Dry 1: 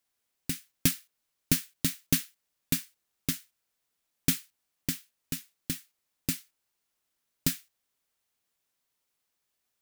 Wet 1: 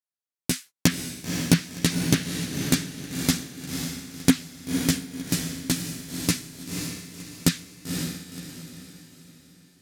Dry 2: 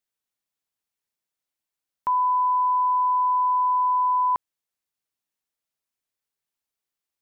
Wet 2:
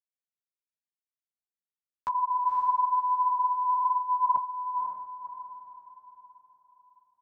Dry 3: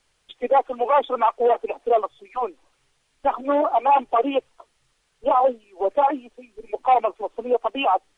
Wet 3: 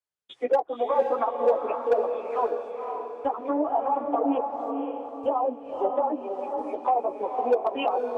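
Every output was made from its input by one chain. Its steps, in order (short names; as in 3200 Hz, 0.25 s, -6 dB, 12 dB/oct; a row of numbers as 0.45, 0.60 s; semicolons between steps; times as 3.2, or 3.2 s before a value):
HPF 90 Hz 12 dB/oct; treble ducked by the level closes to 700 Hz, closed at -16 dBFS; gate -52 dBFS, range -28 dB; bell 2800 Hz -4 dB 0.8 oct; in parallel at +1.5 dB: compressor 6:1, threshold -28 dBFS; on the sum: chorus voices 4, 0.88 Hz, delay 13 ms, depth 3.8 ms; hard clip -10.5 dBFS; on a send: diffused feedback echo 0.526 s, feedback 41%, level -4.5 dB; on the sum: match loudness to -27 LUFS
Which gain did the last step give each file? +8.0, -6.0, -3.5 dB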